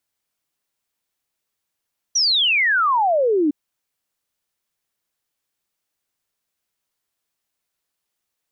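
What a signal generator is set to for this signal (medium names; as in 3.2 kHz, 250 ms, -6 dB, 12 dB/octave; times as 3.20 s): log sweep 6 kHz -> 280 Hz 1.36 s -14.5 dBFS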